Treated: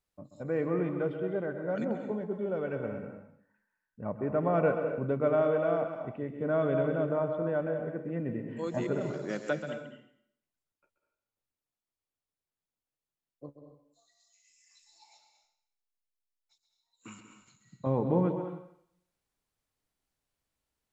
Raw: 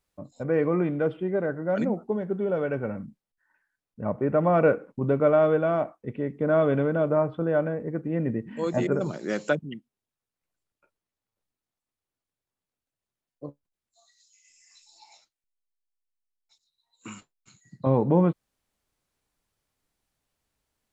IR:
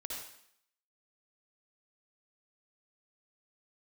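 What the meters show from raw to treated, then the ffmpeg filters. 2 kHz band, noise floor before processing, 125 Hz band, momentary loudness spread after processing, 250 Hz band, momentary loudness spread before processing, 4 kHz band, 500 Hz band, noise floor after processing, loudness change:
−6.0 dB, below −85 dBFS, −6.5 dB, 15 LU, −6.0 dB, 18 LU, −6.0 dB, −5.5 dB, below −85 dBFS, −6.0 dB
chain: -filter_complex "[0:a]asplit=2[link_01][link_02];[1:a]atrim=start_sample=2205,adelay=132[link_03];[link_02][link_03]afir=irnorm=-1:irlink=0,volume=-5dB[link_04];[link_01][link_04]amix=inputs=2:normalize=0,volume=-7dB"

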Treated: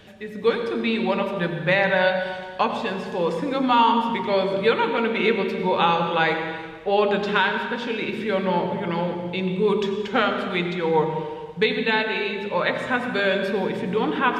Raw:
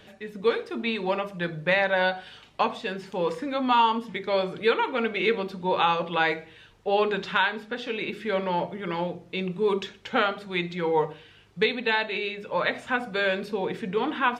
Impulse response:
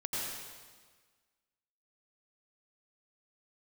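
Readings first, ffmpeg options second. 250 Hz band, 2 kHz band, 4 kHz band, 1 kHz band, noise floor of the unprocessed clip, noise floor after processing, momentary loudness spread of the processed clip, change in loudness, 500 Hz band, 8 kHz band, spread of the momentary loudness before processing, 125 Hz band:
+6.5 dB, +3.0 dB, +3.0 dB, +3.5 dB, −53 dBFS, −35 dBFS, 7 LU, +4.0 dB, +4.5 dB, can't be measured, 8 LU, +6.5 dB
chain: -filter_complex "[0:a]asplit=2[link_01][link_02];[1:a]atrim=start_sample=2205,lowshelf=frequency=350:gain=10[link_03];[link_02][link_03]afir=irnorm=-1:irlink=0,volume=-8dB[link_04];[link_01][link_04]amix=inputs=2:normalize=0"

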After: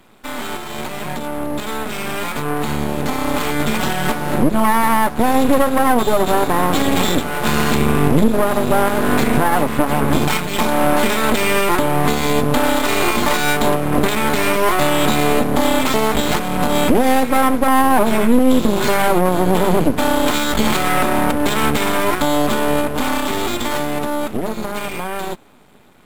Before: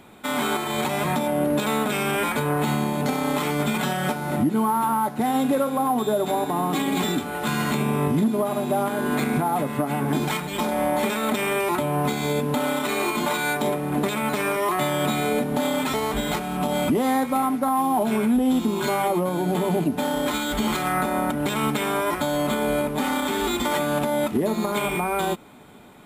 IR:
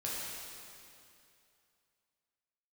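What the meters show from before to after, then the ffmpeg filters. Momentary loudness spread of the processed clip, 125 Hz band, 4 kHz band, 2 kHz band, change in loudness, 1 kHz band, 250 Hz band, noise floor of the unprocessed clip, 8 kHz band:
10 LU, +5.5 dB, +7.5 dB, +7.5 dB, +6.5 dB, +6.5 dB, +5.5 dB, −31 dBFS, +7.0 dB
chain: -af "dynaudnorm=framelen=310:gausssize=21:maxgain=11dB,aeval=exprs='max(val(0),0)':channel_layout=same,volume=2dB"

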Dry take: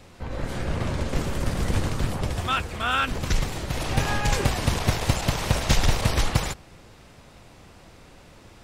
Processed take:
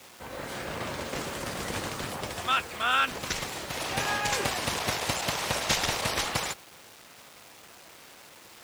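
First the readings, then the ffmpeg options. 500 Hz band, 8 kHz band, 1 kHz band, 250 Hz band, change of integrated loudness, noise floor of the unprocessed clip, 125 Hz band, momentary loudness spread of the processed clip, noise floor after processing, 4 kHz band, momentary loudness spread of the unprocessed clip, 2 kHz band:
−3.5 dB, 0.0 dB, −1.0 dB, −8.5 dB, −3.5 dB, −50 dBFS, −14.5 dB, 23 LU, −52 dBFS, 0.0 dB, 7 LU, −0.5 dB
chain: -af "acrusher=bits=7:mix=0:aa=0.000001,highpass=frequency=580:poles=1"

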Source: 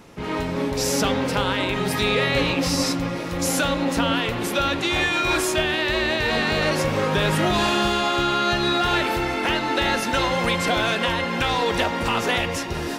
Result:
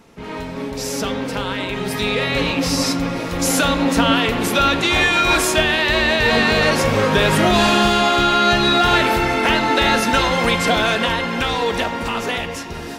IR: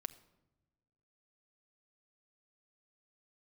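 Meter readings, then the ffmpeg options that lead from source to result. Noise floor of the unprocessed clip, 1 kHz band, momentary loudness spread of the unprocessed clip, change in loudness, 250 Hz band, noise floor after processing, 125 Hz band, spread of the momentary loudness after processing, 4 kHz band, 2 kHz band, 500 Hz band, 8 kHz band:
−28 dBFS, +5.0 dB, 4 LU, +5.0 dB, +4.5 dB, −29 dBFS, +3.0 dB, 9 LU, +5.0 dB, +5.0 dB, +4.0 dB, +4.0 dB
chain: -filter_complex "[0:a]dynaudnorm=framelen=480:gausssize=11:maxgain=11.5dB[link_01];[1:a]atrim=start_sample=2205,asetrate=57330,aresample=44100[link_02];[link_01][link_02]afir=irnorm=-1:irlink=0,volume=3dB"

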